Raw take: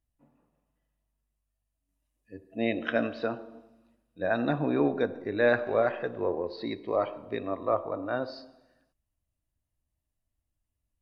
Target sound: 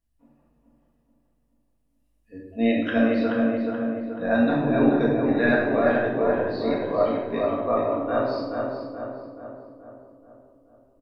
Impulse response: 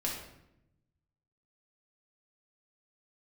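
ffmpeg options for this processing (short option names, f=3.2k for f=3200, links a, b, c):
-filter_complex "[0:a]asplit=2[a][b];[b]adelay=429,lowpass=f=1.9k:p=1,volume=-3dB,asplit=2[c][d];[d]adelay=429,lowpass=f=1.9k:p=1,volume=0.55,asplit=2[e][f];[f]adelay=429,lowpass=f=1.9k:p=1,volume=0.55,asplit=2[g][h];[h]adelay=429,lowpass=f=1.9k:p=1,volume=0.55,asplit=2[i][j];[j]adelay=429,lowpass=f=1.9k:p=1,volume=0.55,asplit=2[k][l];[l]adelay=429,lowpass=f=1.9k:p=1,volume=0.55,asplit=2[m][n];[n]adelay=429,lowpass=f=1.9k:p=1,volume=0.55,asplit=2[o][p];[p]adelay=429,lowpass=f=1.9k:p=1,volume=0.55[q];[a][c][e][g][i][k][m][o][q]amix=inputs=9:normalize=0[r];[1:a]atrim=start_sample=2205,afade=t=out:st=0.35:d=0.01,atrim=end_sample=15876[s];[r][s]afir=irnorm=-1:irlink=0"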